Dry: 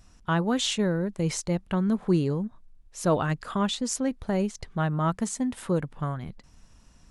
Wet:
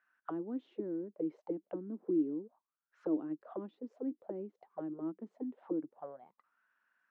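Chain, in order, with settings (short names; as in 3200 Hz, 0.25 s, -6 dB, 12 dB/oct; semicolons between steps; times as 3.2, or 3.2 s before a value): three-band isolator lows -23 dB, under 180 Hz, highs -22 dB, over 4000 Hz; auto-wah 310–1600 Hz, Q 9.8, down, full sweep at -26 dBFS; gain +2 dB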